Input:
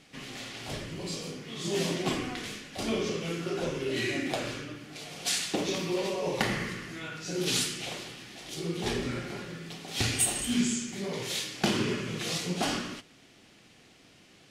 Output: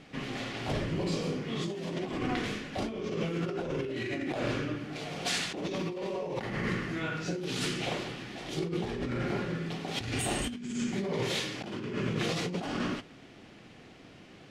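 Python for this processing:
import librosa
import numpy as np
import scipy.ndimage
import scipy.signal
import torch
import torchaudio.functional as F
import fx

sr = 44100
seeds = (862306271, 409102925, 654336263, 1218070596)

y = fx.lowpass(x, sr, hz=1600.0, slope=6)
y = fx.over_compress(y, sr, threshold_db=-37.0, ratio=-1.0)
y = y * librosa.db_to_amplitude(4.0)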